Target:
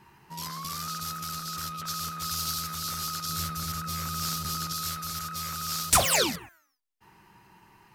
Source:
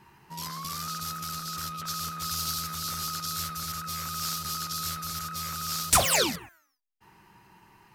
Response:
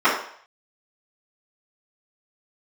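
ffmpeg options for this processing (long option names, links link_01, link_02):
-filter_complex "[0:a]asettb=1/sr,asplit=3[link_01][link_02][link_03];[link_01]atrim=end=3.294[link_04];[link_02]atrim=start=3.29:end=4.73,asetpts=PTS-STARTPTS,afade=type=in:duration=0.004:curve=qsin,afade=type=out:start_time=1.436:duration=0.004:curve=qsin,lowshelf=frequency=480:gain=6[link_05];[link_03]atrim=start=4.726[link_06];[link_04][link_05]acrossfade=duration=0.004:curve1=hsin:curve2=qsin[link_07];[link_07][link_06]acrossfade=duration=0.004:curve1=qsin:curve2=hsin"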